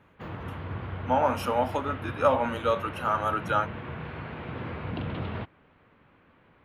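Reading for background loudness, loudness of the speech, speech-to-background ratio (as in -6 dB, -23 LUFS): -37.0 LUFS, -27.5 LUFS, 9.5 dB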